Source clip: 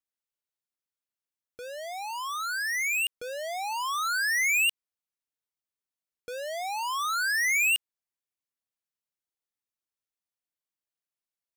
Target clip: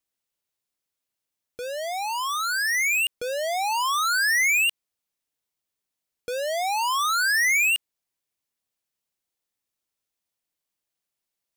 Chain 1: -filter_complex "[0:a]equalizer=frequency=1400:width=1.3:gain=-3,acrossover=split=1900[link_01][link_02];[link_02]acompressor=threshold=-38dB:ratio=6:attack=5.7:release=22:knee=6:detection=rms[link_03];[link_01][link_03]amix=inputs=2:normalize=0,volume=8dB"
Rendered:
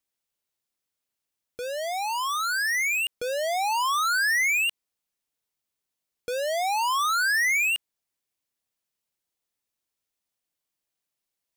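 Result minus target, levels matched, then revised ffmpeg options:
downward compressor: peak gain reduction +5 dB
-filter_complex "[0:a]equalizer=frequency=1400:width=1.3:gain=-3,acrossover=split=1900[link_01][link_02];[link_02]acompressor=threshold=-32dB:ratio=6:attack=5.7:release=22:knee=6:detection=rms[link_03];[link_01][link_03]amix=inputs=2:normalize=0,volume=8dB"

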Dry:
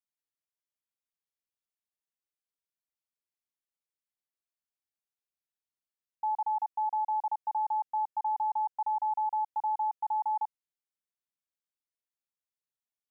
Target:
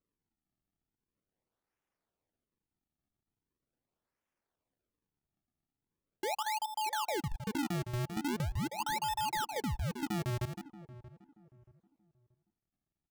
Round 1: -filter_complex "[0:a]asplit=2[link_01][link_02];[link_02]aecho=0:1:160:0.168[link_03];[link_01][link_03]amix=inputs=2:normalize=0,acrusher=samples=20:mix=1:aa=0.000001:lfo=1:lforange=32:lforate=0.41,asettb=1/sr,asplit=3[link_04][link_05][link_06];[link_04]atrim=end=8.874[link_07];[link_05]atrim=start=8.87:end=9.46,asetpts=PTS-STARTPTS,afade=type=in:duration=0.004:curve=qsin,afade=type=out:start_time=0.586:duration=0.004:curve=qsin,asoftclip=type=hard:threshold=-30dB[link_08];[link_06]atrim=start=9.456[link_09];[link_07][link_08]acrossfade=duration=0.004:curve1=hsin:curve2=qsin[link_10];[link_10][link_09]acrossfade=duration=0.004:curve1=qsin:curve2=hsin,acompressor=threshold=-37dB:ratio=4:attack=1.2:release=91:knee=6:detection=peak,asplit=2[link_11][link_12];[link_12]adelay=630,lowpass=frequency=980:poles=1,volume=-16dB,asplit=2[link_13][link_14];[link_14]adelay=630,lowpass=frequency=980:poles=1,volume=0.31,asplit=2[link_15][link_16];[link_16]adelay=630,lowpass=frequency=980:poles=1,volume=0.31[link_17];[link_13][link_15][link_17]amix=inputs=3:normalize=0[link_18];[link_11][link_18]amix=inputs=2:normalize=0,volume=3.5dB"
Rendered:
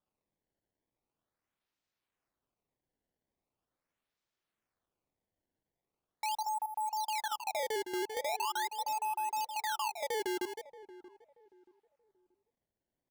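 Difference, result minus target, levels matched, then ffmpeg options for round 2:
sample-and-hold swept by an LFO: distortion −9 dB
-filter_complex "[0:a]asplit=2[link_01][link_02];[link_02]aecho=0:1:160:0.168[link_03];[link_01][link_03]amix=inputs=2:normalize=0,acrusher=samples=50:mix=1:aa=0.000001:lfo=1:lforange=80:lforate=0.41,asettb=1/sr,asplit=3[link_04][link_05][link_06];[link_04]atrim=end=8.874[link_07];[link_05]atrim=start=8.87:end=9.46,asetpts=PTS-STARTPTS,afade=type=in:duration=0.004:curve=qsin,afade=type=out:start_time=0.586:duration=0.004:curve=qsin,asoftclip=type=hard:threshold=-30dB[link_08];[link_06]atrim=start=9.456[link_09];[link_07][link_08]acrossfade=duration=0.004:curve1=hsin:curve2=qsin[link_10];[link_10][link_09]acrossfade=duration=0.004:curve1=qsin:curve2=hsin,acompressor=threshold=-37dB:ratio=4:attack=1.2:release=91:knee=6:detection=peak,asplit=2[link_11][link_12];[link_12]adelay=630,lowpass=frequency=980:poles=1,volume=-16dB,asplit=2[link_13][link_14];[link_14]adelay=630,lowpass=frequency=980:poles=1,volume=0.31,asplit=2[link_15][link_16];[link_16]adelay=630,lowpass=frequency=980:poles=1,volume=0.31[link_17];[link_13][link_15][link_17]amix=inputs=3:normalize=0[link_18];[link_11][link_18]amix=inputs=2:normalize=0,volume=3.5dB"

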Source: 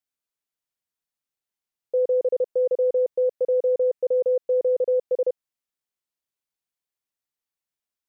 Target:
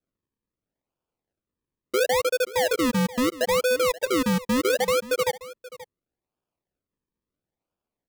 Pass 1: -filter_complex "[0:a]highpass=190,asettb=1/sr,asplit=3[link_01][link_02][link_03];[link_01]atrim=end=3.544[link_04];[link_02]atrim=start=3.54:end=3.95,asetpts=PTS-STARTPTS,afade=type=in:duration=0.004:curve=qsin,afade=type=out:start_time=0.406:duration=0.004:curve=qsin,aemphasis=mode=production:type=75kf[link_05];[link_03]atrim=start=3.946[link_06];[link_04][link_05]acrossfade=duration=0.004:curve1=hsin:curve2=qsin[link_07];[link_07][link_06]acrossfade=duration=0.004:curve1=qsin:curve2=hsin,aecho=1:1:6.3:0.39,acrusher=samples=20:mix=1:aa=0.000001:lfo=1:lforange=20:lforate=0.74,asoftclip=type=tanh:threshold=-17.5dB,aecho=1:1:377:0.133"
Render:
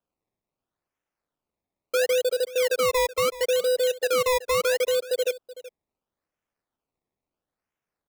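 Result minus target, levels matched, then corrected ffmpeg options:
sample-and-hold swept by an LFO: distortion −15 dB; echo 153 ms early
-filter_complex "[0:a]highpass=190,asettb=1/sr,asplit=3[link_01][link_02][link_03];[link_01]atrim=end=3.544[link_04];[link_02]atrim=start=3.54:end=3.95,asetpts=PTS-STARTPTS,afade=type=in:duration=0.004:curve=qsin,afade=type=out:start_time=0.406:duration=0.004:curve=qsin,aemphasis=mode=production:type=75kf[link_05];[link_03]atrim=start=3.946[link_06];[link_04][link_05]acrossfade=duration=0.004:curve1=hsin:curve2=qsin[link_07];[link_07][link_06]acrossfade=duration=0.004:curve1=qsin:curve2=hsin,aecho=1:1:6.3:0.39,acrusher=samples=43:mix=1:aa=0.000001:lfo=1:lforange=43:lforate=0.74,asoftclip=type=tanh:threshold=-17.5dB,aecho=1:1:530:0.133"

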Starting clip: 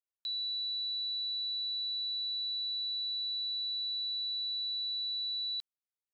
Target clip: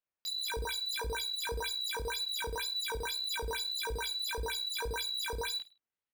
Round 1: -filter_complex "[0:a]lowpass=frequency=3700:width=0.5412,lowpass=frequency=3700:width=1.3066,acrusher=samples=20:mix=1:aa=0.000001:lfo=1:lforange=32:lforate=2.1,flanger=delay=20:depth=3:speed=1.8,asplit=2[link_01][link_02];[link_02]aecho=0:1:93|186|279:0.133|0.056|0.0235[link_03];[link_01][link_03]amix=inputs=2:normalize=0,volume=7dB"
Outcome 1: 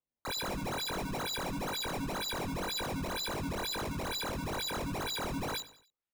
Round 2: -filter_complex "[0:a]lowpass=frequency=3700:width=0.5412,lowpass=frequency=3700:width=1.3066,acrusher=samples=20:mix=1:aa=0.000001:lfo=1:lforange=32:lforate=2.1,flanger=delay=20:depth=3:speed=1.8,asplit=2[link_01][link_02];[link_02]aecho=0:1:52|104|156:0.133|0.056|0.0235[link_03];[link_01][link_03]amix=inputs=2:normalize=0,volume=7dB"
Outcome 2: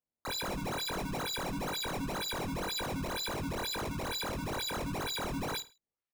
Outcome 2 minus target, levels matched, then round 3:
sample-and-hold swept by an LFO: distortion +13 dB
-filter_complex "[0:a]lowpass=frequency=3700:width=0.5412,lowpass=frequency=3700:width=1.3066,acrusher=samples=6:mix=1:aa=0.000001:lfo=1:lforange=9.6:lforate=2.1,flanger=delay=20:depth=3:speed=1.8,asplit=2[link_01][link_02];[link_02]aecho=0:1:52|104|156:0.133|0.056|0.0235[link_03];[link_01][link_03]amix=inputs=2:normalize=0,volume=7dB"

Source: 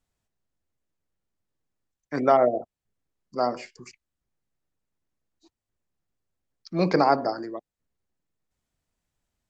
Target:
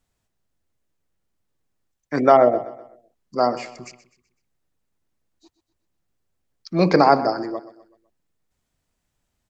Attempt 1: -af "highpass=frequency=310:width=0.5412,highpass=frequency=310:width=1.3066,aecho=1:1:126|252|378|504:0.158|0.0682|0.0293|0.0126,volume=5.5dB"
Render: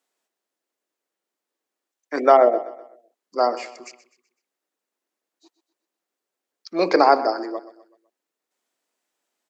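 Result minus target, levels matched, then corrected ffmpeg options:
250 Hz band −4.5 dB
-af "aecho=1:1:126|252|378|504:0.158|0.0682|0.0293|0.0126,volume=5.5dB"

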